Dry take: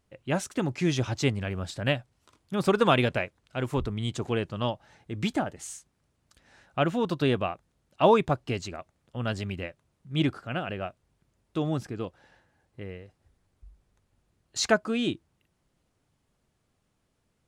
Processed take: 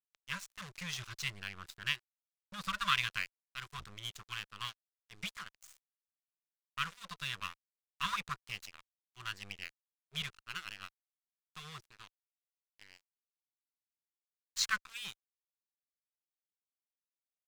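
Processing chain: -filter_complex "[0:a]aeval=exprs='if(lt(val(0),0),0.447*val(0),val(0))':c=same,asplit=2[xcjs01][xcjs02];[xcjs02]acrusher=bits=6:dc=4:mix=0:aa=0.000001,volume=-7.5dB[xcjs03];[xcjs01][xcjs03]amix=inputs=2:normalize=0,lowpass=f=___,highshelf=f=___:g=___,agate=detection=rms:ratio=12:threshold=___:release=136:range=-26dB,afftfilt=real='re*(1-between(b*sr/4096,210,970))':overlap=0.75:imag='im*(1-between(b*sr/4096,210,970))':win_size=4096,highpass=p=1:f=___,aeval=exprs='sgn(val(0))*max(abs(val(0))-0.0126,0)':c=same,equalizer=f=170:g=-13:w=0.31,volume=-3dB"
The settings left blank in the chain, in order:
7400, 3900, 2.5, -50dB, 43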